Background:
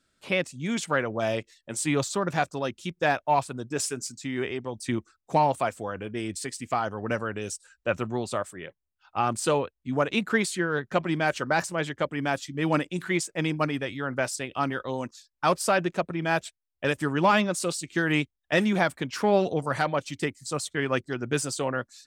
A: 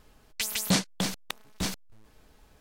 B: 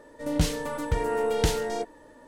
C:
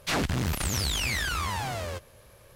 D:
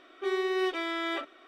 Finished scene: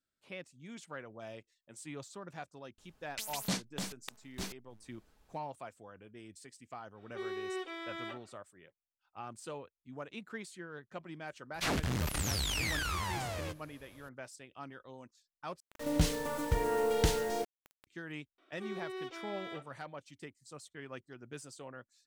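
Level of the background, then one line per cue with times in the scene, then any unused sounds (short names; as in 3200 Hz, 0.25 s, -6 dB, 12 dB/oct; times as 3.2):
background -19.5 dB
2.78 add A -10 dB
6.93 add D -10.5 dB, fades 0.10 s
11.54 add C -5.5 dB
15.6 replace with B -4.5 dB + bit-crush 7-bit
18.38 add D -13 dB + notch 1800 Hz, Q 14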